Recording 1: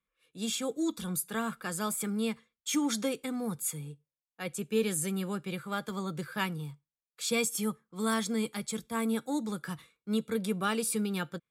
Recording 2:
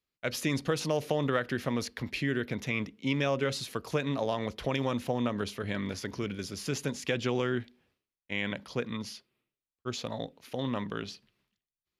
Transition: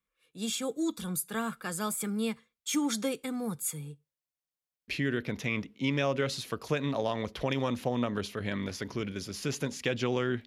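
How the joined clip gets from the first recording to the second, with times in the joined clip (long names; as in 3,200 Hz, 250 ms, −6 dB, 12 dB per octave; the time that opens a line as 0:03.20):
recording 1
0:04.16: stutter in place 0.09 s, 8 plays
0:04.88: continue with recording 2 from 0:02.11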